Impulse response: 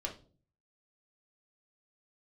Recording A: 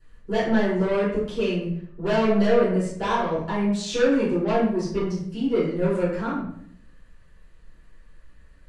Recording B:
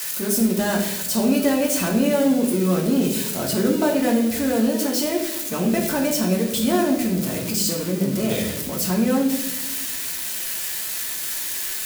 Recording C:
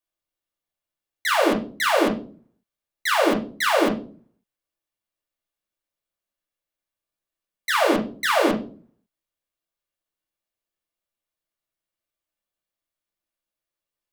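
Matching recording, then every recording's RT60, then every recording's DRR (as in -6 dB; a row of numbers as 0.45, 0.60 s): C; 0.65 s, 1.0 s, not exponential; -12.5, -1.0, -0.5 dB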